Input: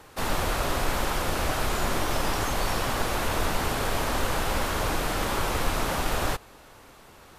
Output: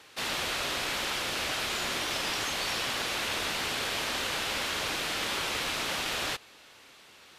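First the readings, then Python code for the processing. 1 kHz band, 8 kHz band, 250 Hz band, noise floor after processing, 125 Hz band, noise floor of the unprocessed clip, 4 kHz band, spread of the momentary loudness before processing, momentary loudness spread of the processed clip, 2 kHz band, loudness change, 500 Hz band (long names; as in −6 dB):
−7.0 dB, −1.5 dB, −9.0 dB, −55 dBFS, −14.5 dB, −51 dBFS, +3.5 dB, 0 LU, 1 LU, −0.5 dB, −2.5 dB, −8.0 dB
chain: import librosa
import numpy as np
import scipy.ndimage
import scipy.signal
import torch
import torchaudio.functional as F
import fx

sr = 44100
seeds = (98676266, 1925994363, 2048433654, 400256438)

y = fx.weighting(x, sr, curve='D')
y = y * librosa.db_to_amplitude(-7.5)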